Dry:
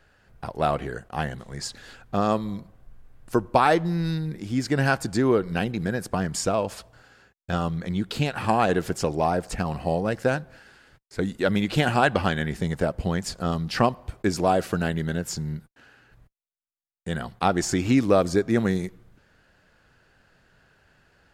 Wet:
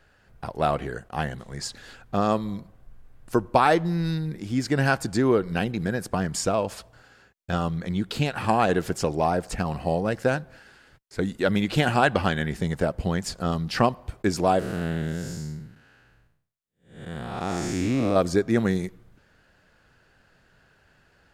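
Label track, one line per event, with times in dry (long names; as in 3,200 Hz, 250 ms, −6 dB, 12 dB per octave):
14.590000	18.160000	spectrum smeared in time width 265 ms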